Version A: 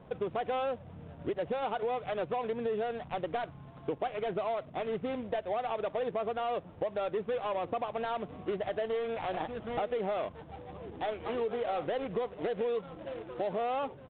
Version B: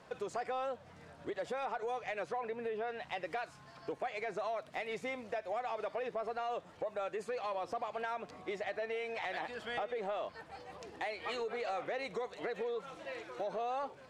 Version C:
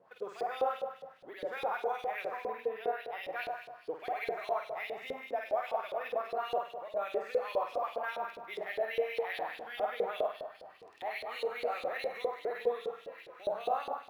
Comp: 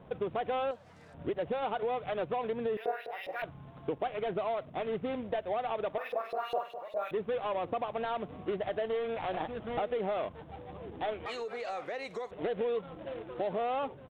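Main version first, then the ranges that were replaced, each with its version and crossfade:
A
0.71–1.14 s: from B
2.77–3.42 s: from C
5.98–7.11 s: from C
11.26–12.31 s: from B

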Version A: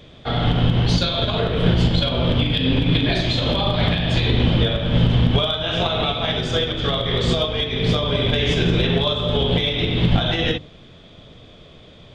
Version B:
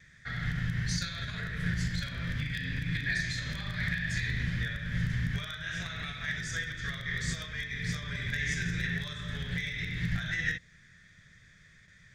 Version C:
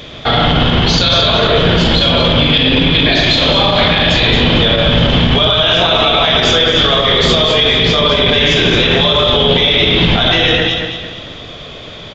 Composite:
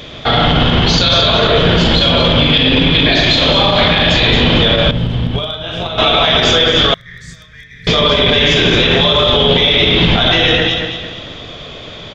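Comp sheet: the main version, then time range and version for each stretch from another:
C
4.91–5.98 s: from A
6.94–7.87 s: from B

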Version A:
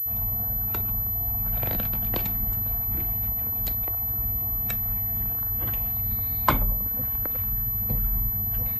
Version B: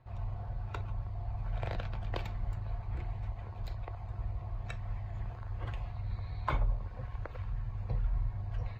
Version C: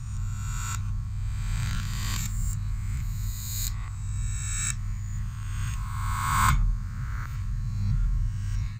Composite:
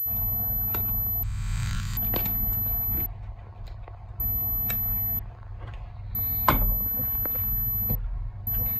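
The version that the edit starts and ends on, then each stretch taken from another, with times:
A
1.23–1.97 s: from C
3.06–4.20 s: from B
5.19–6.15 s: from B
7.95–8.47 s: from B

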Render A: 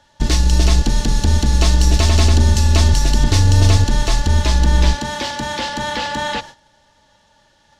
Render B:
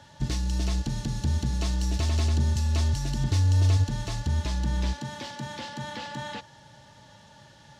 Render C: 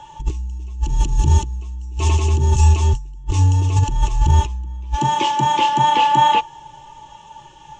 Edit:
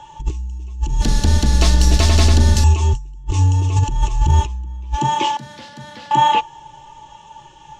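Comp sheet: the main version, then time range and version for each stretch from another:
C
1.02–2.64 s: from A
5.37–6.11 s: from B

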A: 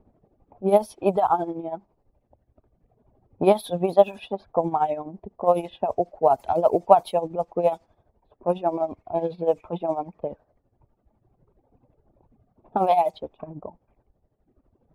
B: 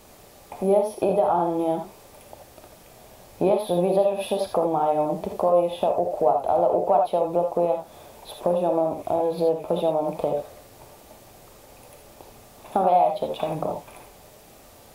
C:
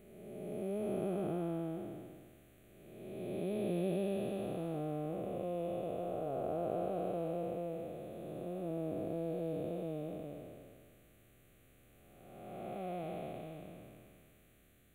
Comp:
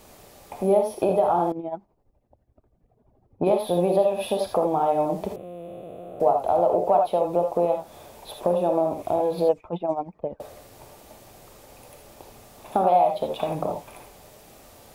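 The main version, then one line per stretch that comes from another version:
B
1.52–3.47 s: from A
5.36–6.20 s: from C
9.49–10.40 s: from A

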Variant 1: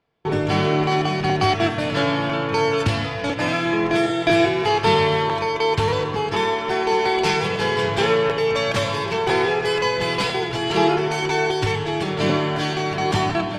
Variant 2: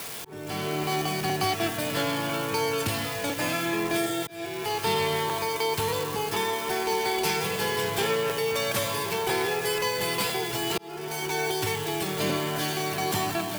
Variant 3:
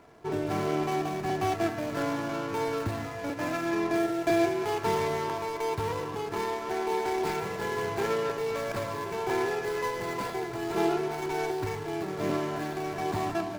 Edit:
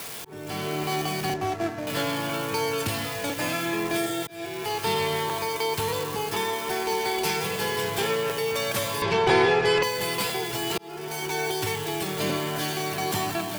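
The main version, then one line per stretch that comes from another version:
2
1.34–1.87 s: from 3
9.02–9.83 s: from 1

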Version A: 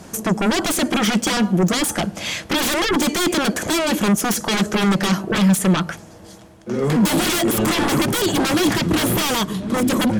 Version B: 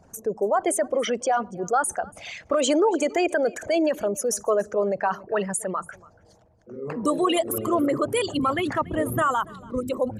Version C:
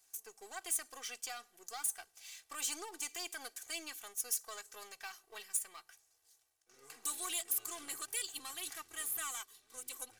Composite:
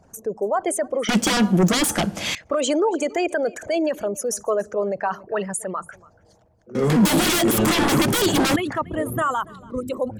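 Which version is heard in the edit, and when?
B
1.09–2.35 s: from A
6.75–8.56 s: from A
not used: C

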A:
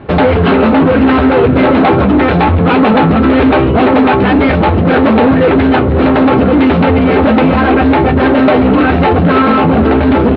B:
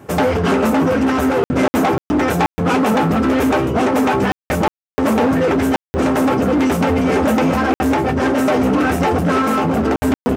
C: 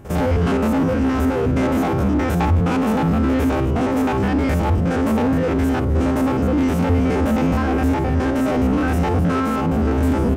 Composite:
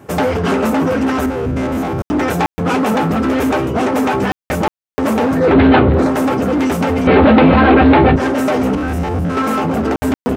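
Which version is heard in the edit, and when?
B
1.26–2.02 s: from C
5.46–6.01 s: from A, crossfade 0.24 s
7.07–8.16 s: from A
8.75–9.37 s: from C

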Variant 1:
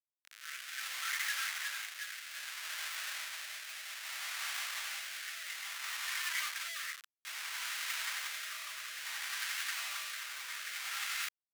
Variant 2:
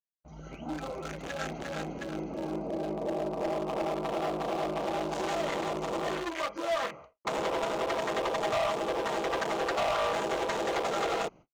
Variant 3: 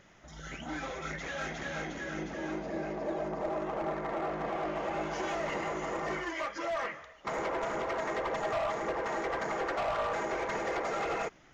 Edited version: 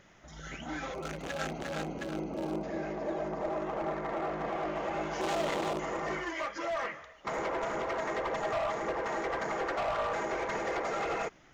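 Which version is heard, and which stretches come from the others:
3
0.94–2.63 s: from 2
5.21–5.79 s: from 2
not used: 1

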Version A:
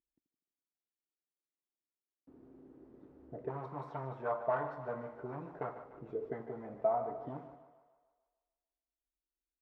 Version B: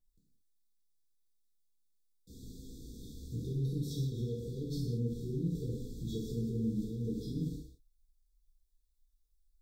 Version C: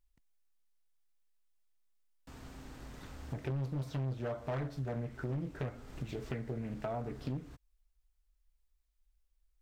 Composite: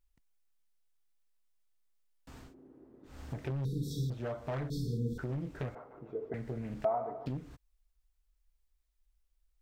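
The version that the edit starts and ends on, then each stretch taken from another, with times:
C
2.47–3.11 s: from A, crossfade 0.16 s
3.65–4.10 s: from B
4.70–5.18 s: from B
5.75–6.34 s: from A
6.85–7.26 s: from A

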